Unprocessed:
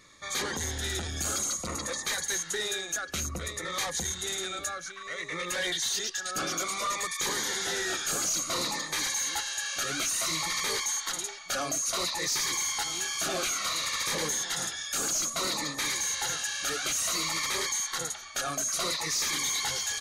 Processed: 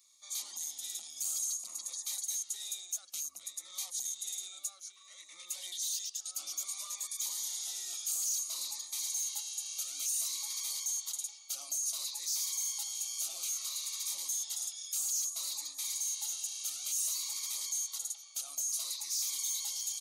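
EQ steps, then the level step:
first difference
low-shelf EQ 71 Hz −7.5 dB
phaser with its sweep stopped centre 440 Hz, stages 6
−2.5 dB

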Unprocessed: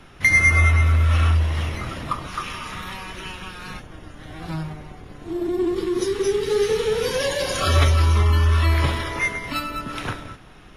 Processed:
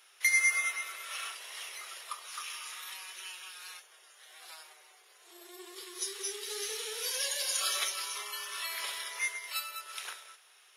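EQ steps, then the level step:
linear-phase brick-wall high-pass 350 Hz
first difference
0.0 dB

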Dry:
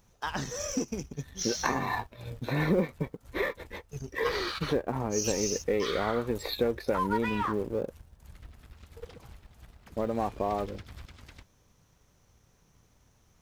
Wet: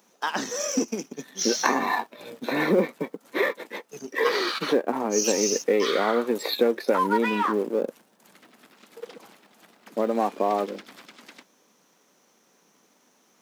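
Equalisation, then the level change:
Butterworth high-pass 210 Hz 36 dB per octave
+6.5 dB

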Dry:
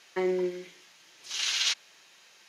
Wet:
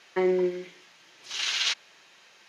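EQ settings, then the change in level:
high-shelf EQ 5,600 Hz −11.5 dB
+4.0 dB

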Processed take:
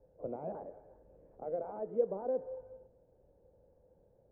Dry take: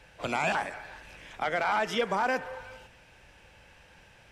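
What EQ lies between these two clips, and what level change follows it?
transistor ladder low-pass 570 Hz, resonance 60%
0.0 dB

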